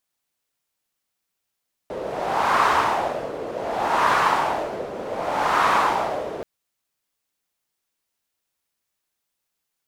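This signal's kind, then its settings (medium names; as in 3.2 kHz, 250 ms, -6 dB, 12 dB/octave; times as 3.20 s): wind-like swept noise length 4.53 s, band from 500 Hz, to 1.1 kHz, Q 2.8, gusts 3, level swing 12.5 dB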